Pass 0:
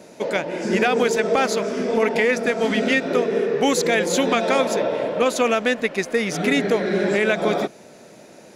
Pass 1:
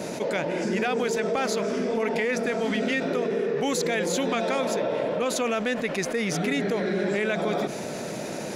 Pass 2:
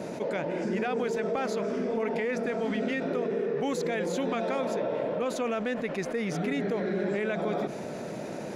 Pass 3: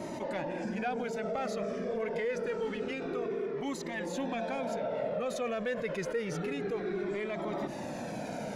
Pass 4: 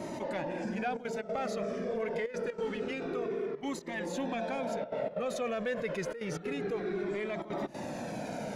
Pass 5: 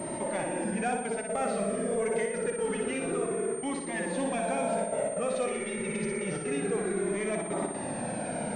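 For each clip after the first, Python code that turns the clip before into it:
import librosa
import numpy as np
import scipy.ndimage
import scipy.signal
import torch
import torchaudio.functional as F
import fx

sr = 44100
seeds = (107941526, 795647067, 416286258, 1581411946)

y1 = fx.peak_eq(x, sr, hz=150.0, db=3.5, octaves=0.87)
y1 = fx.env_flatten(y1, sr, amount_pct=70)
y1 = y1 * librosa.db_to_amplitude(-9.0)
y2 = fx.high_shelf(y1, sr, hz=2600.0, db=-10.0)
y2 = y2 * librosa.db_to_amplitude(-3.0)
y3 = fx.rider(y2, sr, range_db=3, speed_s=0.5)
y3 = 10.0 ** (-20.5 / 20.0) * np.tanh(y3 / 10.0 ** (-20.5 / 20.0))
y3 = fx.comb_cascade(y3, sr, direction='falling', hz=0.27)
y3 = y3 * librosa.db_to_amplitude(1.5)
y4 = fx.step_gate(y3, sr, bpm=186, pattern='xxxxxxxxxxxx.xx.', floor_db=-12.0, edge_ms=4.5)
y5 = fx.spec_repair(y4, sr, seeds[0], start_s=5.49, length_s=0.73, low_hz=210.0, high_hz=2500.0, source='after')
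y5 = fx.echo_feedback(y5, sr, ms=60, feedback_pct=55, wet_db=-5.0)
y5 = fx.pwm(y5, sr, carrier_hz=8700.0)
y5 = y5 * librosa.db_to_amplitude(2.5)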